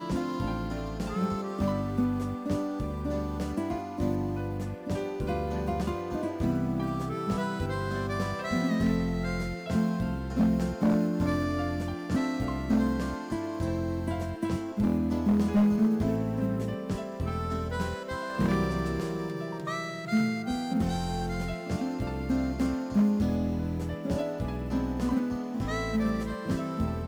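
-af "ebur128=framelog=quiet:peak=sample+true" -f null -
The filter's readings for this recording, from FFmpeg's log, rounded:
Integrated loudness:
  I:         -30.0 LUFS
  Threshold: -40.0 LUFS
Loudness range:
  LRA:         3.7 LU
  Threshold: -49.9 LUFS
  LRA low:   -31.6 LUFS
  LRA high:  -27.9 LUFS
Sample peak:
  Peak:      -17.5 dBFS
True peak:
  Peak:      -17.3 dBFS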